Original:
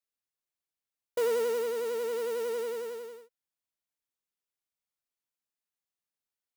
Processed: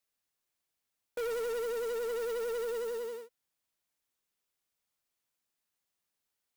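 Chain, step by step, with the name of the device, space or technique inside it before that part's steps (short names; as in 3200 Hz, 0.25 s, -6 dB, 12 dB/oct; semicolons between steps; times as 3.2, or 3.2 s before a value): saturation between pre-emphasis and de-emphasis (high shelf 4300 Hz +8 dB; soft clip -39 dBFS, distortion -6 dB; high shelf 4300 Hz -8 dB); gain +6.5 dB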